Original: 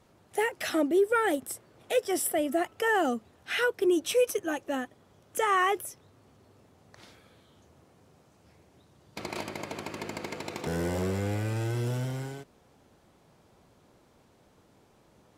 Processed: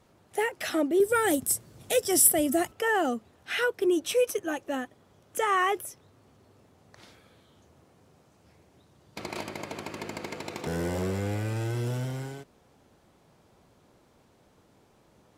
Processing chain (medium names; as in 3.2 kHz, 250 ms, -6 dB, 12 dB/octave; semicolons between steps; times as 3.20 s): 1.00–2.72 s: tone controls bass +12 dB, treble +12 dB